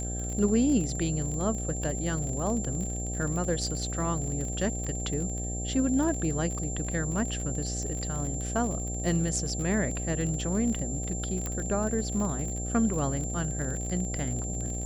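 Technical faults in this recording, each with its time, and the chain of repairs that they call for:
buzz 60 Hz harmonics 13 -34 dBFS
crackle 41/s -33 dBFS
tone 7300 Hz -36 dBFS
11.46 pop -18 dBFS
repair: de-click; notch 7300 Hz, Q 30; de-hum 60 Hz, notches 13

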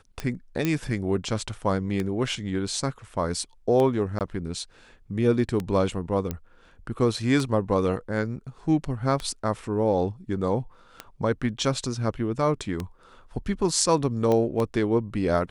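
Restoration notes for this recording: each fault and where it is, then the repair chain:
tick 33 1/3 rpm -15 dBFS
0.65 pop -11 dBFS
4.19–4.21 gap 18 ms
6.31 pop -15 dBFS
14.32 pop -14 dBFS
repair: de-click; interpolate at 4.19, 18 ms

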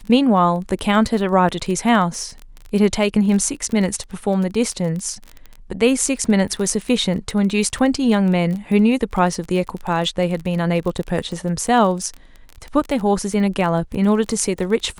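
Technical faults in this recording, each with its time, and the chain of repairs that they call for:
crackle 23/s -25 dBFS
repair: de-click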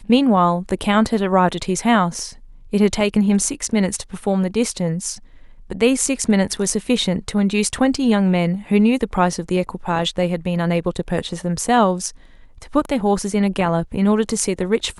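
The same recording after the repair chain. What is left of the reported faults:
none

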